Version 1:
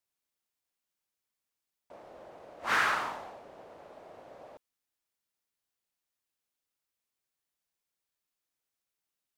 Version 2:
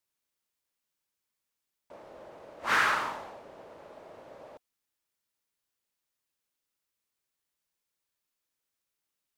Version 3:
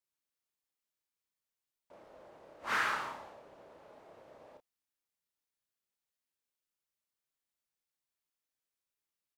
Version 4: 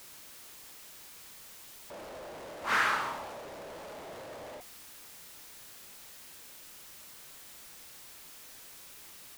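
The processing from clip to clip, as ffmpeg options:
-af "bandreject=f=730:w=12,volume=1.26"
-filter_complex "[0:a]asplit=2[s0][s1];[s1]adelay=30,volume=0.531[s2];[s0][s2]amix=inputs=2:normalize=0,volume=0.398"
-af "aeval=exprs='val(0)+0.5*0.00473*sgn(val(0))':c=same,volume=1.58"

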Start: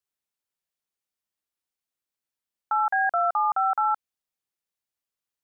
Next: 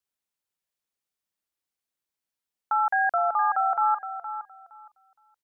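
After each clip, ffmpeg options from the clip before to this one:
-af "aecho=1:1:466|932|1398:0.282|0.0535|0.0102"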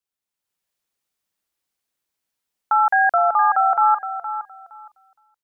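-af "dynaudnorm=f=170:g=5:m=2.66,volume=0.841"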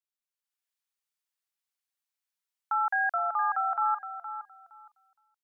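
-af "highpass=950,volume=0.376"

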